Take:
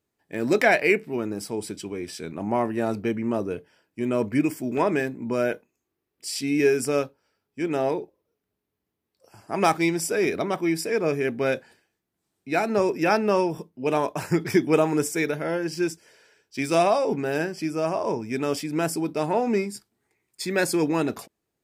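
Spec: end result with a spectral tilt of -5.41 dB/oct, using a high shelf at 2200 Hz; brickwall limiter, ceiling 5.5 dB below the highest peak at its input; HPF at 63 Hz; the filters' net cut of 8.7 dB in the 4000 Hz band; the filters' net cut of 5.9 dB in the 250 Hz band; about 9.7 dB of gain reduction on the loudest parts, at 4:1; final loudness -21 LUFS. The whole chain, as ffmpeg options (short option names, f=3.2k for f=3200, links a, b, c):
-af "highpass=63,equalizer=f=250:t=o:g=-8.5,highshelf=f=2.2k:g=-6.5,equalizer=f=4k:t=o:g=-5,acompressor=threshold=-29dB:ratio=4,volume=14dB,alimiter=limit=-9dB:level=0:latency=1"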